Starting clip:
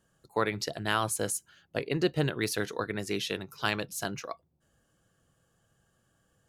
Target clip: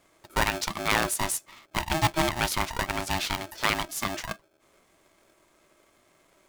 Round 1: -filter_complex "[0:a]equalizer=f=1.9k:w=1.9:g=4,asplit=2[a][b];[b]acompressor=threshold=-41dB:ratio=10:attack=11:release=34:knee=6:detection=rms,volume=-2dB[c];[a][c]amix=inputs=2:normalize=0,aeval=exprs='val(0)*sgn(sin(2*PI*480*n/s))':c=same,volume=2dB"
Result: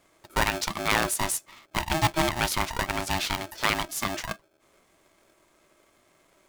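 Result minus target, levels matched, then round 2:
compressor: peak gain reduction -6 dB
-filter_complex "[0:a]equalizer=f=1.9k:w=1.9:g=4,asplit=2[a][b];[b]acompressor=threshold=-47.5dB:ratio=10:attack=11:release=34:knee=6:detection=rms,volume=-2dB[c];[a][c]amix=inputs=2:normalize=0,aeval=exprs='val(0)*sgn(sin(2*PI*480*n/s))':c=same,volume=2dB"

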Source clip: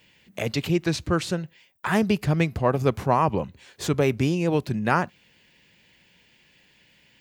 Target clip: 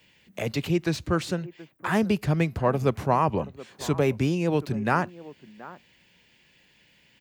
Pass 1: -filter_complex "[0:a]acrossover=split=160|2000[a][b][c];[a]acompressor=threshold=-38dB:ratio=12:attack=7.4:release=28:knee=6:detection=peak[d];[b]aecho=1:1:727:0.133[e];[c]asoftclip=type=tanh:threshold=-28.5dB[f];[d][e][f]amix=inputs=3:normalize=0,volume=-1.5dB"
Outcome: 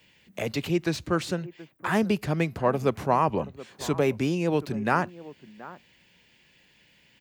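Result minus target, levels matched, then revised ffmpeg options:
compressor: peak gain reduction +14.5 dB
-filter_complex "[0:a]acrossover=split=160|2000[a][b][c];[b]aecho=1:1:727:0.133[d];[c]asoftclip=type=tanh:threshold=-28.5dB[e];[a][d][e]amix=inputs=3:normalize=0,volume=-1.5dB"

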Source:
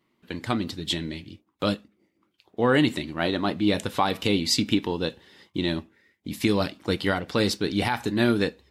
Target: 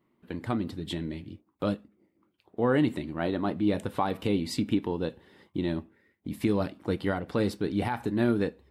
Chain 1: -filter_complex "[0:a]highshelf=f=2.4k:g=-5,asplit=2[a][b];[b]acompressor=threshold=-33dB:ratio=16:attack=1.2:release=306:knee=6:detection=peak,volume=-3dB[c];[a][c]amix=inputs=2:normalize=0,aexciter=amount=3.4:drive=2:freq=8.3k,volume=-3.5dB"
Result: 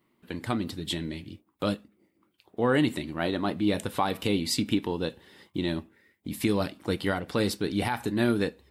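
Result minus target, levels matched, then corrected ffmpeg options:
4000 Hz band +6.5 dB
-filter_complex "[0:a]highshelf=f=2.4k:g=-16.5,asplit=2[a][b];[b]acompressor=threshold=-33dB:ratio=16:attack=1.2:release=306:knee=6:detection=peak,volume=-3dB[c];[a][c]amix=inputs=2:normalize=0,aexciter=amount=3.4:drive=2:freq=8.3k,volume=-3.5dB"

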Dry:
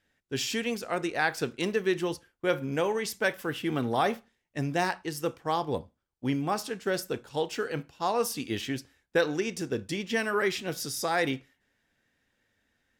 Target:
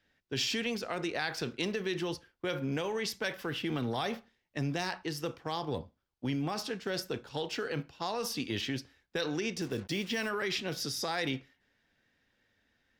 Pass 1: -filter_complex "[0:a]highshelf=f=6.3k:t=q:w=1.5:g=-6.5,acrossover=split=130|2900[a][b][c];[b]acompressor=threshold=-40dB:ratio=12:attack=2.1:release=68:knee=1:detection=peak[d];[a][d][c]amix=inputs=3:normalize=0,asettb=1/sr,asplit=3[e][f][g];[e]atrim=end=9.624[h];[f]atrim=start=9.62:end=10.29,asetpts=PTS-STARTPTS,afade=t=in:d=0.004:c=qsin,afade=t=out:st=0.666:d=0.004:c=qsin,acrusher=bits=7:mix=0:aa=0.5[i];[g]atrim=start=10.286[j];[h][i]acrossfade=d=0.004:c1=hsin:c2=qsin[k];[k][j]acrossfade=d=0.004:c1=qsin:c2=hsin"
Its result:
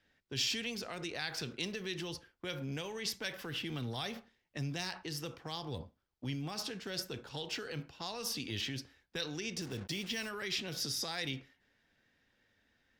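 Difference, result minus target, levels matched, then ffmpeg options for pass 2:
compressor: peak gain reduction +9 dB
-filter_complex "[0:a]highshelf=f=6.3k:t=q:w=1.5:g=-6.5,acrossover=split=130|2900[a][b][c];[b]acompressor=threshold=-30dB:ratio=12:attack=2.1:release=68:knee=1:detection=peak[d];[a][d][c]amix=inputs=3:normalize=0,asettb=1/sr,asplit=3[e][f][g];[e]atrim=end=9.624[h];[f]atrim=start=9.62:end=10.29,asetpts=PTS-STARTPTS,afade=t=in:d=0.004:c=qsin,afade=t=out:st=0.666:d=0.004:c=qsin,acrusher=bits=7:mix=0:aa=0.5[i];[g]atrim=start=10.286[j];[h][i]acrossfade=d=0.004:c1=hsin:c2=qsin[k];[k][j]acrossfade=d=0.004:c1=qsin:c2=hsin"

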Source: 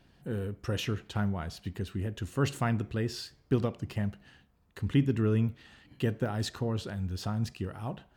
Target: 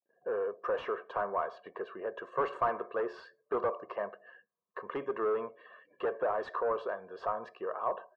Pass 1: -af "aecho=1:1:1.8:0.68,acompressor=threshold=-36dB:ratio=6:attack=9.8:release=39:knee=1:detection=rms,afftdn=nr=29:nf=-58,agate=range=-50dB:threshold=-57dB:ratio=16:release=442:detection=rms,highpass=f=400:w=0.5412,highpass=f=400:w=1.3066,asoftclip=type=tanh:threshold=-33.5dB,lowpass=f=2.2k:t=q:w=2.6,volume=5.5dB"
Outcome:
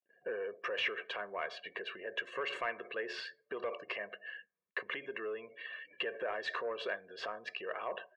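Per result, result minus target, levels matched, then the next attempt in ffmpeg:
compressor: peak gain reduction +14.5 dB; 2000 Hz band +10.0 dB
-af "aecho=1:1:1.8:0.68,afftdn=nr=29:nf=-58,agate=range=-50dB:threshold=-57dB:ratio=16:release=442:detection=rms,highpass=f=400:w=0.5412,highpass=f=400:w=1.3066,asoftclip=type=tanh:threshold=-33.5dB,lowpass=f=2.2k:t=q:w=2.6,volume=5.5dB"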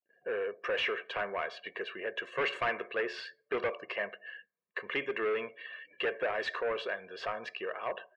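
2000 Hz band +9.5 dB
-af "aecho=1:1:1.8:0.68,afftdn=nr=29:nf=-58,agate=range=-50dB:threshold=-57dB:ratio=16:release=442:detection=rms,highpass=f=400:w=0.5412,highpass=f=400:w=1.3066,asoftclip=type=tanh:threshold=-33.5dB,lowpass=f=1.1k:t=q:w=2.6,volume=5.5dB"

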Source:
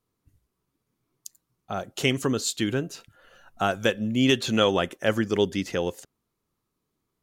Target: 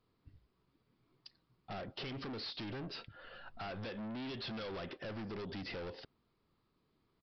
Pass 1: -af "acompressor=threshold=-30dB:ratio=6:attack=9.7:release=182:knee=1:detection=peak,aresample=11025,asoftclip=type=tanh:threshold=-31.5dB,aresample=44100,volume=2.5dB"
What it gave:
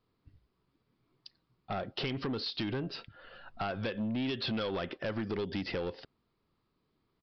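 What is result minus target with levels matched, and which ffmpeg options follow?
soft clip: distortion -7 dB
-af "acompressor=threshold=-30dB:ratio=6:attack=9.7:release=182:knee=1:detection=peak,aresample=11025,asoftclip=type=tanh:threshold=-43.5dB,aresample=44100,volume=2.5dB"

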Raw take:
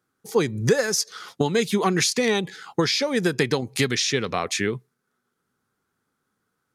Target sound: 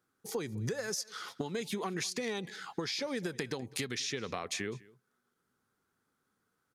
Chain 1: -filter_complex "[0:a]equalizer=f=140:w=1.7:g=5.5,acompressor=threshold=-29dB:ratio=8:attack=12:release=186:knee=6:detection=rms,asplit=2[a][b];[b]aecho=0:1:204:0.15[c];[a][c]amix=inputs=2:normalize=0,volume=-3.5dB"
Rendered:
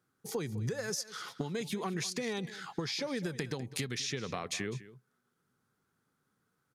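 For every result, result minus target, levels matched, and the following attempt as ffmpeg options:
echo-to-direct +6 dB; 125 Hz band +3.5 dB
-filter_complex "[0:a]equalizer=f=140:w=1.7:g=5.5,acompressor=threshold=-29dB:ratio=8:attack=12:release=186:knee=6:detection=rms,asplit=2[a][b];[b]aecho=0:1:204:0.075[c];[a][c]amix=inputs=2:normalize=0,volume=-3.5dB"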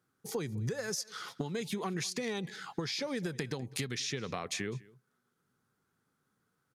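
125 Hz band +3.5 dB
-filter_complex "[0:a]equalizer=f=140:w=1.7:g=-2,acompressor=threshold=-29dB:ratio=8:attack=12:release=186:knee=6:detection=rms,asplit=2[a][b];[b]aecho=0:1:204:0.075[c];[a][c]amix=inputs=2:normalize=0,volume=-3.5dB"

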